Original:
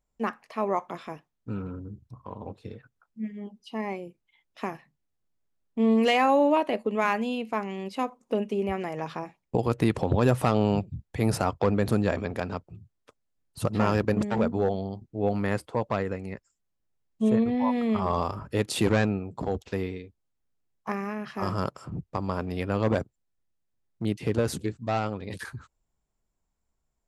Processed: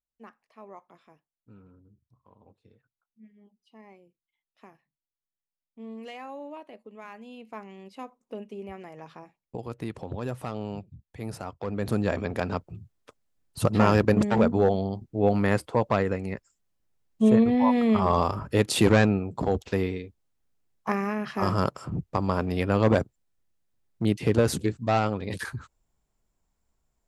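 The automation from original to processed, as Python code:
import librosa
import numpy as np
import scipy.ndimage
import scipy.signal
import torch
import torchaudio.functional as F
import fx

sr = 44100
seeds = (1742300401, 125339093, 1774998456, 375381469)

y = fx.gain(x, sr, db=fx.line((7.1, -19.0), (7.52, -11.0), (11.6, -11.0), (11.88, -2.5), (12.6, 4.0)))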